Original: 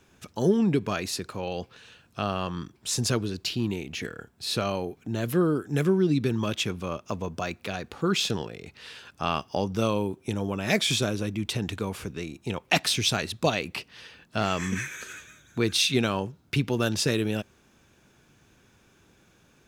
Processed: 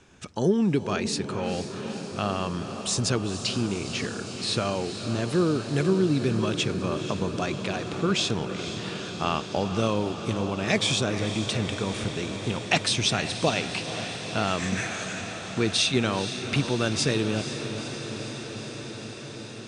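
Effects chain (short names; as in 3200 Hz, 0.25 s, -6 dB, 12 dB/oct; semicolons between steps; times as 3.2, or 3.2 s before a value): steep low-pass 9800 Hz 96 dB/oct; in parallel at -0.5 dB: compressor, threshold -35 dBFS, peak gain reduction 17.5 dB; on the sum: diffused feedback echo 0.485 s, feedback 80%, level -10 dB; gain -1.5 dB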